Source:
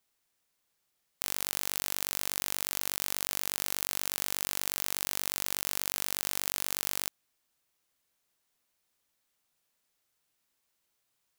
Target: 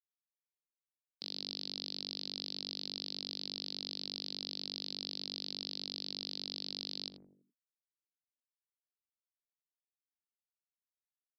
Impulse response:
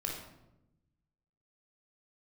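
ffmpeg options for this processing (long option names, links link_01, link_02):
-filter_complex "[0:a]highpass=62,lowshelf=frequency=140:width_type=q:width=1.5:gain=-10,bandreject=frequency=60:width_type=h:width=6,bandreject=frequency=120:width_type=h:width=6,bandreject=frequency=180:width_type=h:width=6,bandreject=frequency=240:width_type=h:width=6,asplit=2[link_01][link_02];[link_02]adelay=83,lowpass=frequency=910:poles=1,volume=-8.5dB,asplit=2[link_03][link_04];[link_04]adelay=83,lowpass=frequency=910:poles=1,volume=0.52,asplit=2[link_05][link_06];[link_06]adelay=83,lowpass=frequency=910:poles=1,volume=0.52,asplit=2[link_07][link_08];[link_08]adelay=83,lowpass=frequency=910:poles=1,volume=0.52,asplit=2[link_09][link_10];[link_10]adelay=83,lowpass=frequency=910:poles=1,volume=0.52,asplit=2[link_11][link_12];[link_12]adelay=83,lowpass=frequency=910:poles=1,volume=0.52[link_13];[link_03][link_05][link_07][link_09][link_11][link_13]amix=inputs=6:normalize=0[link_14];[link_01][link_14]amix=inputs=2:normalize=0,afftfilt=real='re*gte(hypot(re,im),0.000447)':imag='im*gte(hypot(re,im),0.000447)':win_size=1024:overlap=0.75,firequalizer=gain_entry='entry(240,0);entry(1000,-18);entry(1700,-20);entry(4100,5)':delay=0.05:min_phase=1,alimiter=limit=-9dB:level=0:latency=1:release=88,aresample=11025,aresample=44100,volume=4dB"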